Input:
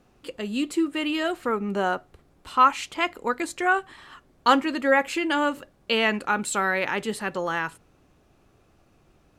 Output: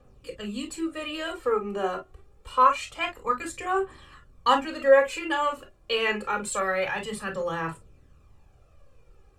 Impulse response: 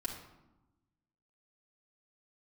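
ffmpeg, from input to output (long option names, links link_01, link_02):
-filter_complex "[0:a]aphaser=in_gain=1:out_gain=1:delay=3:decay=0.51:speed=0.26:type=triangular[link_01];[1:a]atrim=start_sample=2205,atrim=end_sample=4410,asetrate=74970,aresample=44100[link_02];[link_01][link_02]afir=irnorm=-1:irlink=0"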